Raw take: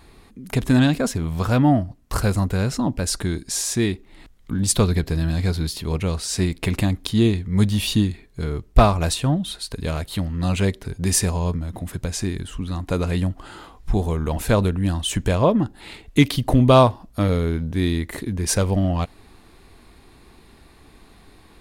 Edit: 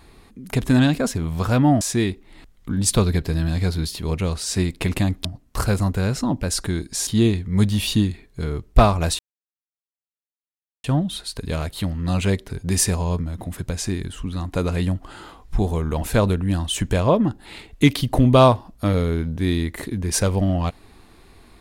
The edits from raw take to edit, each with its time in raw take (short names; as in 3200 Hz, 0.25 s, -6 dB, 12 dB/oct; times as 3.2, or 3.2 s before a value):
1.81–3.63 move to 7.07
9.19 insert silence 1.65 s